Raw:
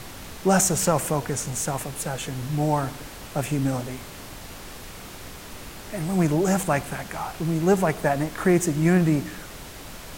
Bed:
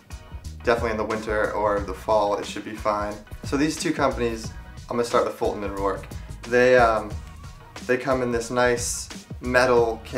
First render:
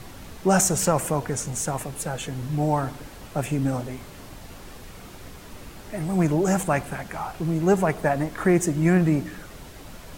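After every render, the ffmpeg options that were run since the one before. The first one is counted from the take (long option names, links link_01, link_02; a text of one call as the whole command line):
ffmpeg -i in.wav -af "afftdn=noise_reduction=6:noise_floor=-40" out.wav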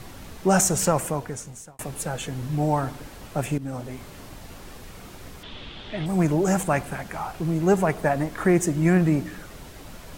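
ffmpeg -i in.wav -filter_complex "[0:a]asettb=1/sr,asplit=3[link_01][link_02][link_03];[link_01]atrim=end=5.434[link_04];[link_02]atrim=start=5.43:end=6.06,asetpts=PTS-STARTPTS,afade=type=in:duration=0.004:curve=qsin,afade=type=out:start_time=0.626:duration=0.004:curve=qsin,lowpass=frequency=3400:width_type=q:width=6.4[link_05];[link_03]atrim=start=6.056[link_06];[link_04][link_05]acrossfade=duration=0.004:curve1=hsin:curve2=qsin[link_07];[link_07][link_06]acrossfade=duration=0.004:curve1=qsin:curve2=hsin,asplit=3[link_08][link_09][link_10];[link_08]atrim=end=1.79,asetpts=PTS-STARTPTS,afade=type=out:start_time=0.91:duration=0.88[link_11];[link_09]atrim=start=1.79:end=3.58,asetpts=PTS-STARTPTS,afade=type=in:duration=0.004:curve=hsin,afade=type=out:start_time=1.786:duration=0.004:curve=hsin:silence=0.188365[link_12];[link_10]atrim=start=3.58,asetpts=PTS-STARTPTS,afade=type=in:duration=0.59:curve=qsin:silence=0.188365[link_13];[link_11][link_12][link_13]concat=n=3:v=0:a=1" out.wav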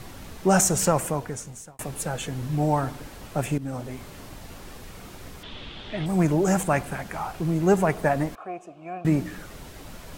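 ffmpeg -i in.wav -filter_complex "[0:a]asettb=1/sr,asplit=3[link_01][link_02][link_03];[link_01]atrim=end=8.354[link_04];[link_02]atrim=start=8.35:end=9.05,asetpts=PTS-STARTPTS,afade=type=in:duration=0.004:curve=qsin,afade=type=out:start_time=0.696:duration=0.004:curve=qsin,asplit=3[link_05][link_06][link_07];[link_05]bandpass=frequency=730:width_type=q:width=8,volume=0dB[link_08];[link_06]bandpass=frequency=1090:width_type=q:width=8,volume=-6dB[link_09];[link_07]bandpass=frequency=2440:width_type=q:width=8,volume=-9dB[link_10];[link_08][link_09][link_10]amix=inputs=3:normalize=0[link_11];[link_03]atrim=start=9.046[link_12];[link_04][link_11]acrossfade=duration=0.004:curve1=hsin:curve2=qsin[link_13];[link_13][link_12]acrossfade=duration=0.004:curve1=qsin:curve2=hsin" out.wav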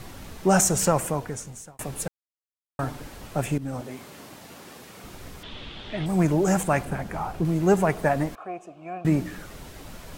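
ffmpeg -i in.wav -filter_complex "[0:a]asettb=1/sr,asplit=3[link_01][link_02][link_03];[link_01]atrim=end=3.814[link_04];[link_02]atrim=start=3.81:end=5.04,asetpts=PTS-STARTPTS,afade=type=in:duration=0.004:curve=qsin,afade=type=out:start_time=1.226:duration=0.004:curve=qsin,highpass=170[link_05];[link_03]atrim=start=5.036[link_06];[link_04][link_05]acrossfade=duration=0.004:curve1=hsin:curve2=qsin[link_07];[link_07][link_06]acrossfade=duration=0.004:curve1=qsin:curve2=hsin,asettb=1/sr,asplit=3[link_08][link_09][link_10];[link_08]atrim=end=6.854[link_11];[link_09]atrim=start=6.85:end=7.45,asetpts=PTS-STARTPTS,afade=type=in:duration=0.004:curve=qsin,afade=type=out:start_time=0.596:duration=0.004:curve=qsin,tiltshelf=frequency=970:gain=4.5[link_12];[link_10]atrim=start=7.446[link_13];[link_11][link_12]acrossfade=duration=0.004:curve1=hsin:curve2=qsin[link_14];[link_14][link_13]acrossfade=duration=0.004:curve1=qsin:curve2=hsin,asplit=3[link_15][link_16][link_17];[link_15]atrim=end=2.08,asetpts=PTS-STARTPTS,afade=type=out:start_time=2.076:duration=0.004:curve=hsin[link_18];[link_16]atrim=start=2.08:end=2.79,asetpts=PTS-STARTPTS,volume=0[link_19];[link_17]atrim=start=2.79,asetpts=PTS-STARTPTS,afade=type=in:duration=0.004:curve=hsin[link_20];[link_18][link_19][link_20]concat=n=3:v=0:a=1" out.wav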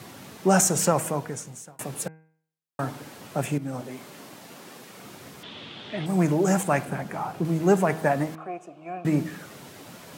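ffmpeg -i in.wav -af "highpass=frequency=120:width=0.5412,highpass=frequency=120:width=1.3066,bandreject=frequency=158.6:width_type=h:width=4,bandreject=frequency=317.2:width_type=h:width=4,bandreject=frequency=475.8:width_type=h:width=4,bandreject=frequency=634.4:width_type=h:width=4,bandreject=frequency=793:width_type=h:width=4,bandreject=frequency=951.6:width_type=h:width=4,bandreject=frequency=1110.2:width_type=h:width=4,bandreject=frequency=1268.8:width_type=h:width=4,bandreject=frequency=1427.4:width_type=h:width=4,bandreject=frequency=1586:width_type=h:width=4,bandreject=frequency=1744.6:width_type=h:width=4,bandreject=frequency=1903.2:width_type=h:width=4,bandreject=frequency=2061.8:width_type=h:width=4,bandreject=frequency=2220.4:width_type=h:width=4,bandreject=frequency=2379:width_type=h:width=4,bandreject=frequency=2537.6:width_type=h:width=4,bandreject=frequency=2696.2:width_type=h:width=4" out.wav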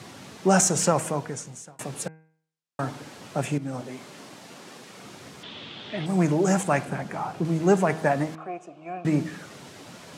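ffmpeg -i in.wav -af "lowpass=7300,highshelf=frequency=5300:gain=5" out.wav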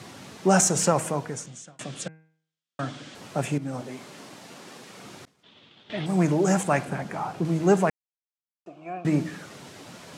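ffmpeg -i in.wav -filter_complex "[0:a]asettb=1/sr,asplit=3[link_01][link_02][link_03];[link_01]atrim=end=1.464[link_04];[link_02]atrim=start=1.46:end=3.15,asetpts=PTS-STARTPTS,afade=type=in:duration=0.004:curve=qsin,afade=type=out:start_time=1.686:duration=0.004:curve=qsin,highpass=110,equalizer=frequency=430:width_type=q:width=4:gain=-7,equalizer=frequency=890:width_type=q:width=4:gain=-10,equalizer=frequency=3300:width_type=q:width=4:gain=8,lowpass=frequency=8200:width=0.5412,lowpass=frequency=8200:width=1.3066[link_05];[link_03]atrim=start=3.146[link_06];[link_04][link_05]acrossfade=duration=0.004:curve1=hsin:curve2=qsin[link_07];[link_07][link_06]acrossfade=duration=0.004:curve1=qsin:curve2=hsin,asettb=1/sr,asplit=3[link_08][link_09][link_10];[link_08]atrim=end=5.254[link_11];[link_09]atrim=start=5.25:end=5.9,asetpts=PTS-STARTPTS,afade=type=in:duration=0.004:curve=qsin,afade=type=out:start_time=0.646:duration=0.004:curve=qsin,agate=range=-33dB:threshold=-32dB:ratio=3:release=100:detection=peak[link_12];[link_10]atrim=start=5.896[link_13];[link_11][link_12]acrossfade=duration=0.004:curve1=hsin:curve2=qsin[link_14];[link_14][link_13]acrossfade=duration=0.004:curve1=qsin:curve2=hsin,asplit=3[link_15][link_16][link_17];[link_15]atrim=end=7.9,asetpts=PTS-STARTPTS,afade=type=out:start_time=7.896:duration=0.004:curve=hsin[link_18];[link_16]atrim=start=7.9:end=8.66,asetpts=PTS-STARTPTS,volume=0[link_19];[link_17]atrim=start=8.66,asetpts=PTS-STARTPTS,afade=type=in:duration=0.004:curve=hsin[link_20];[link_18][link_19][link_20]concat=n=3:v=0:a=1" out.wav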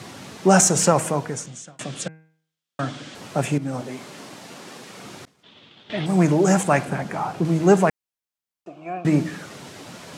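ffmpeg -i in.wav -af "volume=4.5dB" out.wav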